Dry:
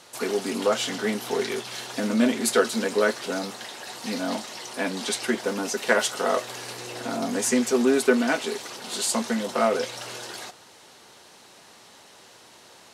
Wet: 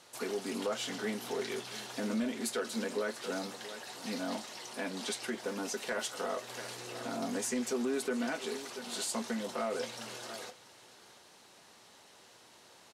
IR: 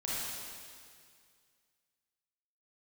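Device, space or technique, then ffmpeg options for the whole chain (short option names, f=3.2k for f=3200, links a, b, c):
soft clipper into limiter: -af "aecho=1:1:682:0.126,asoftclip=type=tanh:threshold=-10dB,alimiter=limit=-17.5dB:level=0:latency=1:release=189,volume=-8dB"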